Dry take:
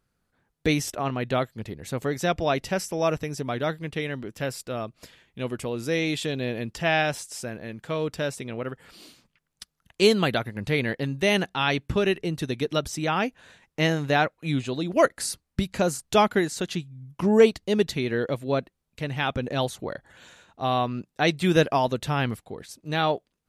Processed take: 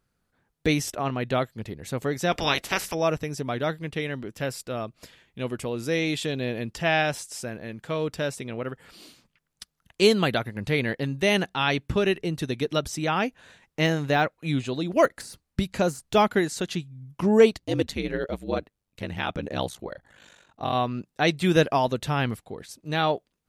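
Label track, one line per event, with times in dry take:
2.310000	2.930000	ceiling on every frequency bin ceiling under each frame's peak by 23 dB
13.860000	16.360000	de-essing amount 70%
17.570000	20.730000	ring modulation 88 Hz → 20 Hz

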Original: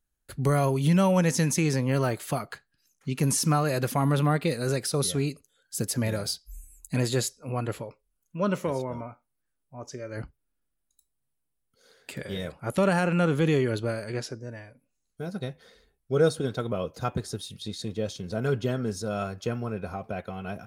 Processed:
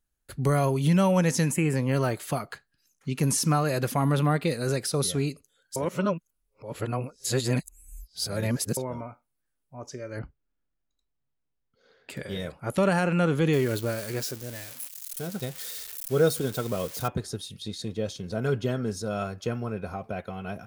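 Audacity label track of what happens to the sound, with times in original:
1.510000	1.760000	gain on a spectral selection 3,200–6,800 Hz −17 dB
5.760000	8.770000	reverse
10.190000	12.100000	high-frequency loss of the air 210 metres
13.530000	17.080000	spike at every zero crossing of −28 dBFS

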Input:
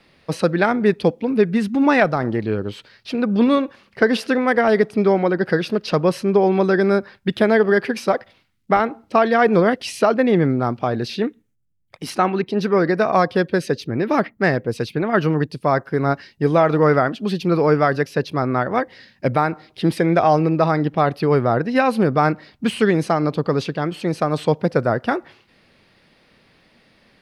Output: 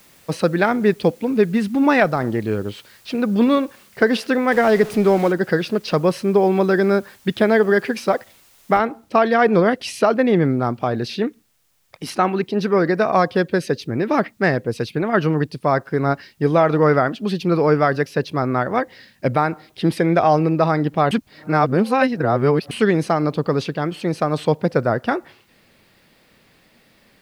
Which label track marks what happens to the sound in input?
4.520000	5.320000	converter with a step at zero of −28 dBFS
8.780000	8.780000	noise floor change −53 dB −66 dB
21.110000	22.710000	reverse

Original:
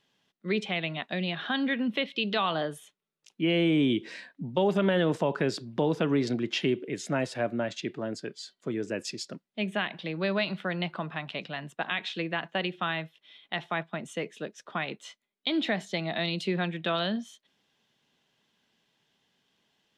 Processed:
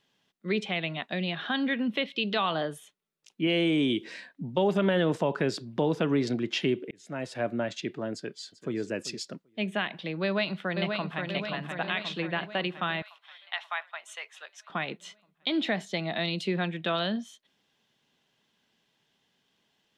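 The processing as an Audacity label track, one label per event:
3.470000	4.040000	bass and treble bass −4 dB, treble +7 dB
6.910000	7.480000	fade in
8.130000	8.790000	delay throw 390 ms, feedback 10%, level −15 dB
10.230000	11.250000	delay throw 530 ms, feedback 60%, level −4.5 dB
13.020000	14.700000	high-pass filter 850 Hz 24 dB per octave

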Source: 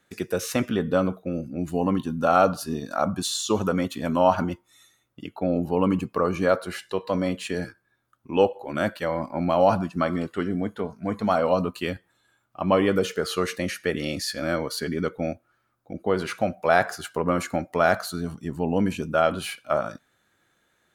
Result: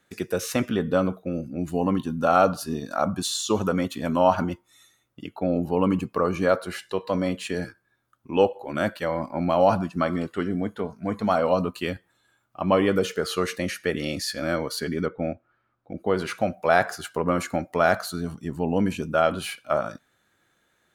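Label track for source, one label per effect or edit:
15.050000	15.960000	low-pass filter 2,000 Hz → 3,700 Hz

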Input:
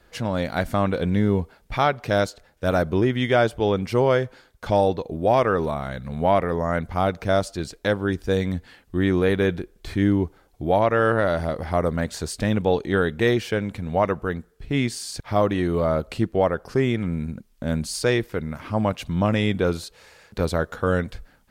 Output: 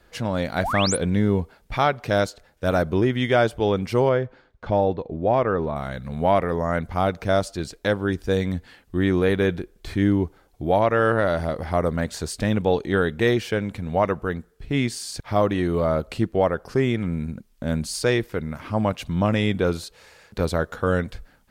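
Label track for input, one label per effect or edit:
0.630000	0.970000	sound drawn into the spectrogram rise 580–11,000 Hz −26 dBFS
4.090000	5.760000	head-to-tape spacing loss at 10 kHz 24 dB

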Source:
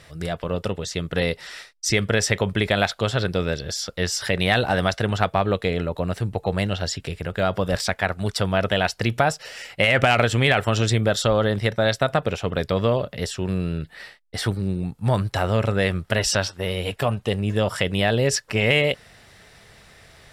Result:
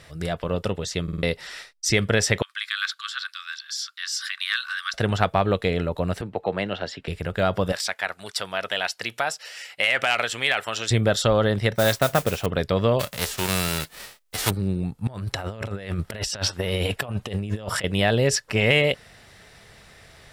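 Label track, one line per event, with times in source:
1.030000	1.030000	stutter in place 0.05 s, 4 plays
2.420000	4.940000	Chebyshev high-pass with heavy ripple 1,100 Hz, ripple 6 dB
6.210000	7.080000	three-way crossover with the lows and the highs turned down lows −15 dB, under 200 Hz, highs −17 dB, over 3,800 Hz
7.720000	10.910000	high-pass filter 1,400 Hz 6 dB per octave
11.750000	12.460000	noise that follows the level under the signal 12 dB
12.990000	14.490000	spectral envelope flattened exponent 0.3
15.070000	17.840000	compressor whose output falls as the input rises −27 dBFS, ratio −0.5

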